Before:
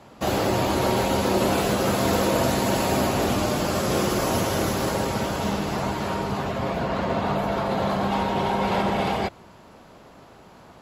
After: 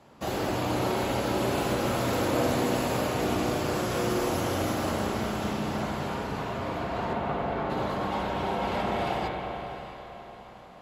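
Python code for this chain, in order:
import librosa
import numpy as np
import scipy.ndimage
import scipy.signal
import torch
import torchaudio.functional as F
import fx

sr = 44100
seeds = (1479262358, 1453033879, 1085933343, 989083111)

p1 = fx.lowpass(x, sr, hz=2900.0, slope=12, at=(7.13, 7.7))
p2 = p1 + fx.echo_diffused(p1, sr, ms=645, feedback_pct=43, wet_db=-14.0, dry=0)
p3 = fx.rev_spring(p2, sr, rt60_s=3.4, pass_ms=(33, 43), chirp_ms=45, drr_db=0.0)
y = F.gain(torch.from_numpy(p3), -7.5).numpy()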